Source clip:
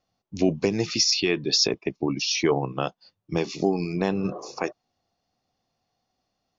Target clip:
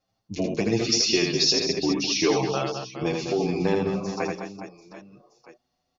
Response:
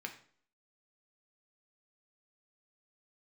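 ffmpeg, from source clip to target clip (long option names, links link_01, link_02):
-filter_complex "[0:a]atempo=1.1,aecho=1:1:80|208|412.8|740.5|1265:0.631|0.398|0.251|0.158|0.1,asplit=2[link_01][link_02];[link_02]adelay=7.2,afreqshift=0.45[link_03];[link_01][link_03]amix=inputs=2:normalize=1,volume=2dB"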